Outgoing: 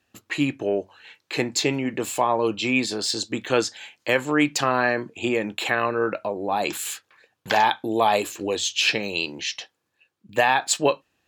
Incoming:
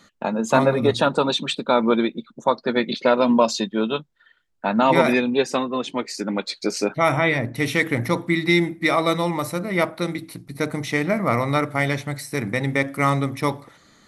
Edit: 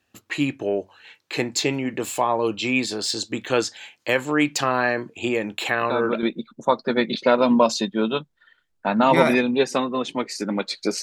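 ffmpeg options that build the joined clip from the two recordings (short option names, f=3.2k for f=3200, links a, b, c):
-filter_complex "[1:a]asplit=2[a][b];[0:a]apad=whole_dur=11.02,atrim=end=11.02,atrim=end=6.232[c];[b]atrim=start=2.018:end=6.81[d];[a]atrim=start=1.6:end=2.02,asetpts=PTS-STARTPTS,volume=-8dB,afade=t=in:d=0.004:c=hsin,afade=t=out:st=0.416:d=0.004:c=hsin,adelay=256221S[e];[c][d]acrossfade=d=0.004:c1=hsin:c2=hsin[f];[f][e]amix=inputs=2:normalize=0"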